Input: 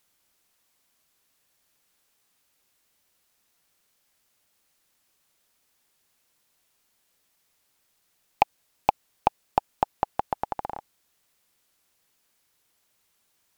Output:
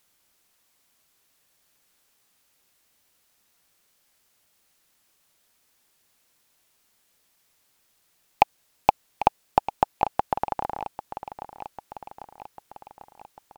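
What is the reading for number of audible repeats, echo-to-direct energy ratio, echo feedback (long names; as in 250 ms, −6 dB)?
5, −11.0 dB, 59%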